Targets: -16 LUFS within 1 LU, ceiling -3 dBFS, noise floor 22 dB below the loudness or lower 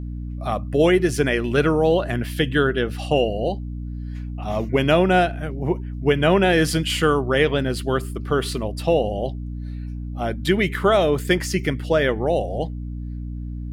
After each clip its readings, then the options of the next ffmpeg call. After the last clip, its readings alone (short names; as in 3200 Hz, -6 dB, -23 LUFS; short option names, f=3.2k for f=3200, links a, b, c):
hum 60 Hz; harmonics up to 300 Hz; hum level -27 dBFS; loudness -21.0 LUFS; peak -4.0 dBFS; loudness target -16.0 LUFS
-> -af "bandreject=f=60:t=h:w=6,bandreject=f=120:t=h:w=6,bandreject=f=180:t=h:w=6,bandreject=f=240:t=h:w=6,bandreject=f=300:t=h:w=6"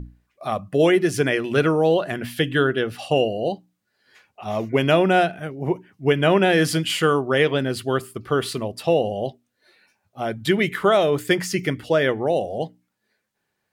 hum none; loudness -21.5 LUFS; peak -4.5 dBFS; loudness target -16.0 LUFS
-> -af "volume=5.5dB,alimiter=limit=-3dB:level=0:latency=1"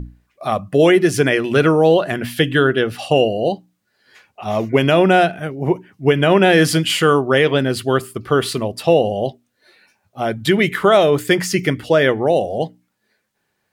loudness -16.5 LUFS; peak -3.0 dBFS; noise floor -71 dBFS